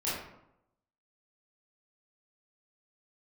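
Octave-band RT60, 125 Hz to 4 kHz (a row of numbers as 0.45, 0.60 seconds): 0.90, 0.85, 0.80, 0.80, 0.60, 0.45 seconds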